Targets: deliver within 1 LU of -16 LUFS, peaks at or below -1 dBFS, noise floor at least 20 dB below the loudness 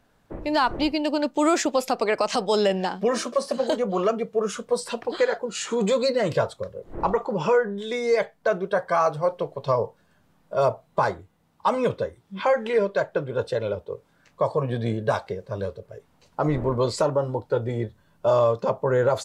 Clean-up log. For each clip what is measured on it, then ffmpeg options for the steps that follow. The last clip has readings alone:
loudness -25.0 LUFS; peak -10.5 dBFS; loudness target -16.0 LUFS
-> -af "volume=9dB"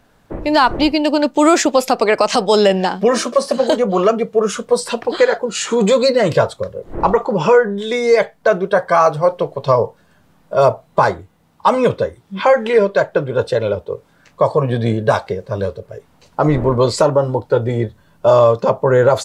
loudness -16.0 LUFS; peak -1.5 dBFS; noise floor -54 dBFS

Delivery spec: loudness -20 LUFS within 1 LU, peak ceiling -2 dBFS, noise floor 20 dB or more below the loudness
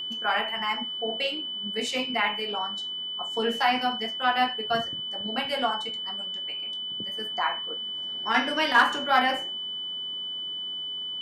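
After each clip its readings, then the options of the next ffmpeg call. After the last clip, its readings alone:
steady tone 3000 Hz; tone level -31 dBFS; loudness -27.0 LUFS; peak -9.5 dBFS; loudness target -20.0 LUFS
-> -af "bandreject=f=3k:w=30"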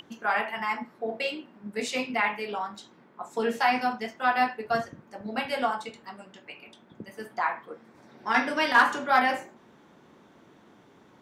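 steady tone none; loudness -27.5 LUFS; peak -10.0 dBFS; loudness target -20.0 LUFS
-> -af "volume=7.5dB"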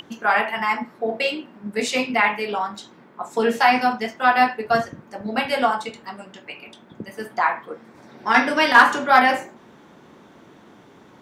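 loudness -20.0 LUFS; peak -2.5 dBFS; noise floor -50 dBFS

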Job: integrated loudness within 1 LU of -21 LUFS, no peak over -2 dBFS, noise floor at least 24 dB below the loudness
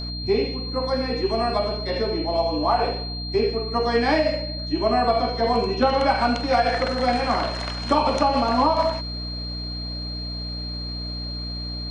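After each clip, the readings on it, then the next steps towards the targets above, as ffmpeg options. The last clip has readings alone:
hum 60 Hz; harmonics up to 300 Hz; hum level -30 dBFS; steady tone 4200 Hz; tone level -32 dBFS; loudness -23.5 LUFS; peak -7.0 dBFS; loudness target -21.0 LUFS
-> -af "bandreject=f=60:t=h:w=6,bandreject=f=120:t=h:w=6,bandreject=f=180:t=h:w=6,bandreject=f=240:t=h:w=6,bandreject=f=300:t=h:w=6"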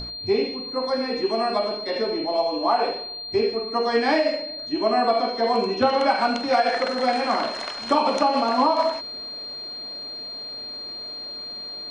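hum none; steady tone 4200 Hz; tone level -32 dBFS
-> -af "bandreject=f=4.2k:w=30"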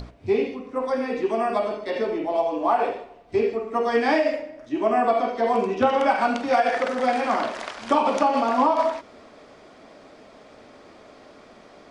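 steady tone none; loudness -23.0 LUFS; peak -8.0 dBFS; loudness target -21.0 LUFS
-> -af "volume=2dB"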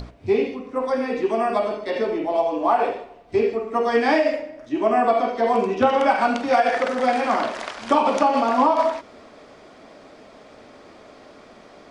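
loudness -21.0 LUFS; peak -6.0 dBFS; noise floor -47 dBFS

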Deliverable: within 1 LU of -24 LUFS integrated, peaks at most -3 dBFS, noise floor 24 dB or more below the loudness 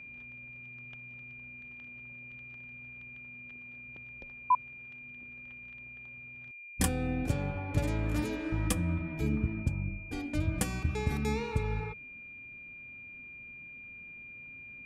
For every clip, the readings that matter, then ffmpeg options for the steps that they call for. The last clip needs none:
steady tone 2400 Hz; tone level -45 dBFS; loudness -36.5 LUFS; peak -15.5 dBFS; loudness target -24.0 LUFS
-> -af "bandreject=f=2.4k:w=30"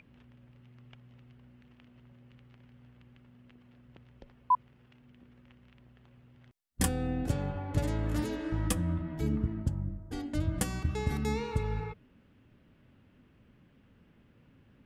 steady tone none; loudness -33.0 LUFS; peak -15.5 dBFS; loudness target -24.0 LUFS
-> -af "volume=9dB"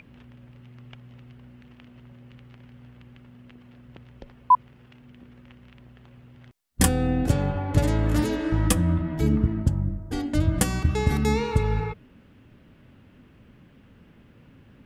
loudness -24.0 LUFS; peak -6.5 dBFS; noise floor -54 dBFS

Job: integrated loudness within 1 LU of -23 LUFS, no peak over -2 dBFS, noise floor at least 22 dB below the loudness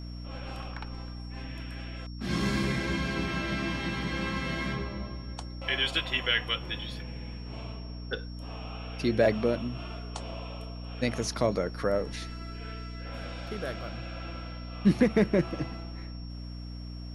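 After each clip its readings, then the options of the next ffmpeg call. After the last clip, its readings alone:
hum 60 Hz; harmonics up to 300 Hz; hum level -37 dBFS; steady tone 5500 Hz; tone level -51 dBFS; loudness -32.0 LUFS; peak -11.5 dBFS; loudness target -23.0 LUFS
-> -af "bandreject=f=60:t=h:w=6,bandreject=f=120:t=h:w=6,bandreject=f=180:t=h:w=6,bandreject=f=240:t=h:w=6,bandreject=f=300:t=h:w=6"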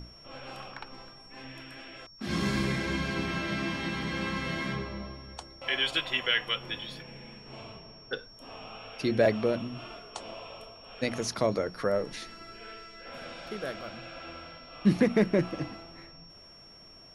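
hum none; steady tone 5500 Hz; tone level -51 dBFS
-> -af "bandreject=f=5.5k:w=30"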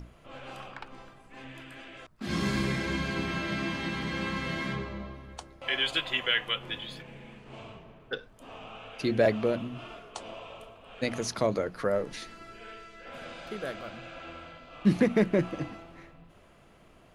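steady tone none; loudness -30.5 LUFS; peak -12.0 dBFS; loudness target -23.0 LUFS
-> -af "volume=7.5dB"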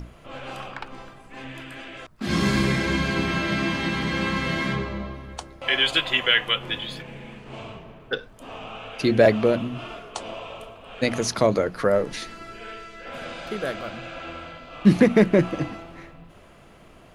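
loudness -23.0 LUFS; peak -4.5 dBFS; noise floor -50 dBFS

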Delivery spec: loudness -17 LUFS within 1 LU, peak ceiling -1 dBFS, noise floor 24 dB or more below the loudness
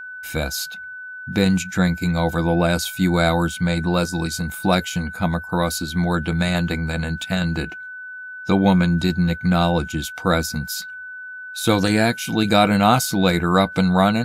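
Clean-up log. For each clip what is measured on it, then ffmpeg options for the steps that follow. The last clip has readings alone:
steady tone 1500 Hz; tone level -32 dBFS; loudness -20.5 LUFS; peak -2.5 dBFS; loudness target -17.0 LUFS
-> -af "bandreject=f=1.5k:w=30"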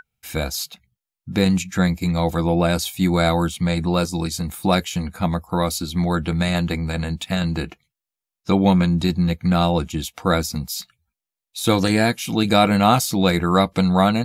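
steady tone none; loudness -20.5 LUFS; peak -3.0 dBFS; loudness target -17.0 LUFS
-> -af "volume=3.5dB,alimiter=limit=-1dB:level=0:latency=1"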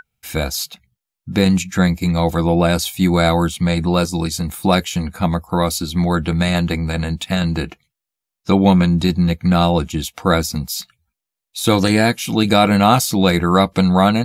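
loudness -17.0 LUFS; peak -1.0 dBFS; noise floor -84 dBFS

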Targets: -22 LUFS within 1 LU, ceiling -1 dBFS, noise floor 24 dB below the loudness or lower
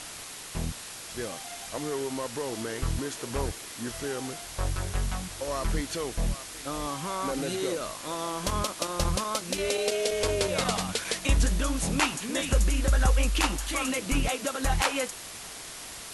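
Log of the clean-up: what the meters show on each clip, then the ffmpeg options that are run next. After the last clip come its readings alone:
noise floor -42 dBFS; noise floor target -54 dBFS; loudness -30.0 LUFS; peak -10.5 dBFS; loudness target -22.0 LUFS
-> -af "afftdn=nr=12:nf=-42"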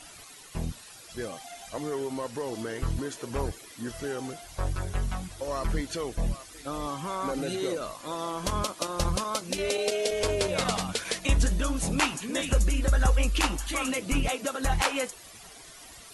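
noise floor -48 dBFS; noise floor target -54 dBFS
-> -af "afftdn=nr=6:nf=-48"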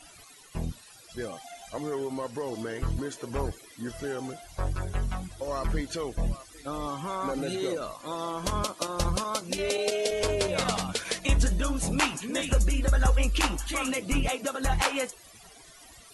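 noise floor -52 dBFS; noise floor target -54 dBFS
-> -af "afftdn=nr=6:nf=-52"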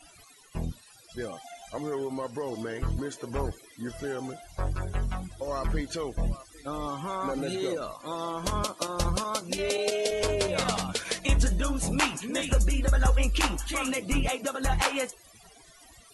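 noise floor -55 dBFS; loudness -30.0 LUFS; peak -11.0 dBFS; loudness target -22.0 LUFS
-> -af "volume=8dB"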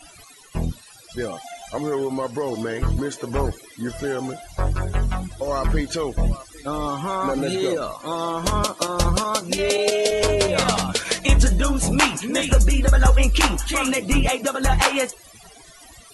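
loudness -22.0 LUFS; peak -3.0 dBFS; noise floor -47 dBFS

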